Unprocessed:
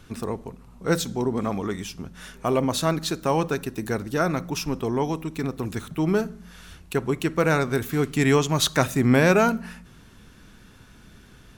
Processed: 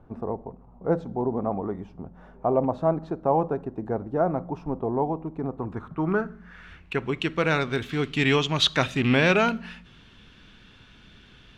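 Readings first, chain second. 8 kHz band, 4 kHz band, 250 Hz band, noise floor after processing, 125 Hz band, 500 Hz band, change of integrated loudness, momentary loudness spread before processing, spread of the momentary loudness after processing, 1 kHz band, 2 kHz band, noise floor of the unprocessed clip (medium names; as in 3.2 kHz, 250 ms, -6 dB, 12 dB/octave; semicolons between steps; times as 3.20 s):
-11.5 dB, +2.0 dB, -3.0 dB, -52 dBFS, -3.5 dB, -1.5 dB, -1.5 dB, 13 LU, 14 LU, -0.5 dB, 0.0 dB, -50 dBFS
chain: rattle on loud lows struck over -21 dBFS, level -23 dBFS; low-pass sweep 770 Hz -> 3.2 kHz, 5.41–7.28 s; treble shelf 5.6 kHz +9.5 dB; trim -3.5 dB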